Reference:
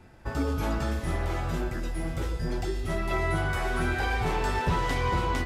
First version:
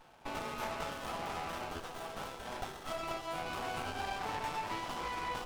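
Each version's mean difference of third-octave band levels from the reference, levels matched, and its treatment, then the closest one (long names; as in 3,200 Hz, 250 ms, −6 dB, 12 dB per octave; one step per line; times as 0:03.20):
6.5 dB: high-pass filter 740 Hz 24 dB per octave
downward compressor 5 to 1, threshold −37 dBFS, peak gain reduction 9.5 dB
windowed peak hold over 17 samples
level +4 dB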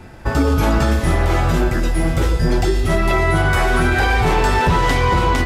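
1.0 dB: boost into a limiter +20 dB
level −6 dB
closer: second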